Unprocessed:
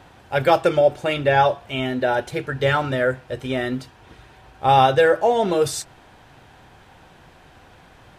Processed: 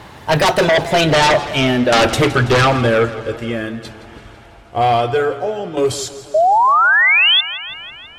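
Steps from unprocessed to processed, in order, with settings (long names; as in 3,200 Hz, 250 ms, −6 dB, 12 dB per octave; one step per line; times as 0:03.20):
source passing by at 0:01.66, 42 m/s, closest 25 metres
shaped tremolo saw down 0.52 Hz, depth 75%
in parallel at −8 dB: sine wavefolder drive 15 dB, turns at −11.5 dBFS
on the sum: sound drawn into the spectrogram rise, 0:06.34–0:07.41, 600–3,600 Hz −19 dBFS
feedback echo with a swinging delay time 165 ms, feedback 64%, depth 79 cents, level −15 dB
level +7.5 dB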